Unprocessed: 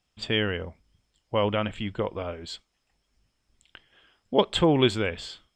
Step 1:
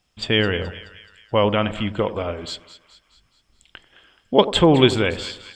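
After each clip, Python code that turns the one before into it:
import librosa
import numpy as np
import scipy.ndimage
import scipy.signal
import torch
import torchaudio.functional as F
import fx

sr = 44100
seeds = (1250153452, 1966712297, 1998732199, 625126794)

y = fx.echo_split(x, sr, split_hz=1200.0, low_ms=91, high_ms=213, feedback_pct=52, wet_db=-14.0)
y = y * librosa.db_to_amplitude(6.5)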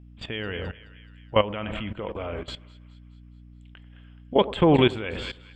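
y = fx.add_hum(x, sr, base_hz=60, snr_db=17)
y = fx.level_steps(y, sr, step_db=16)
y = fx.high_shelf_res(y, sr, hz=3700.0, db=-9.0, q=1.5)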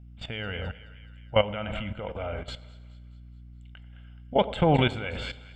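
y = x + 0.56 * np.pad(x, (int(1.4 * sr / 1000.0), 0))[:len(x)]
y = fx.rev_plate(y, sr, seeds[0], rt60_s=1.6, hf_ratio=1.0, predelay_ms=0, drr_db=18.5)
y = y * librosa.db_to_amplitude(-2.5)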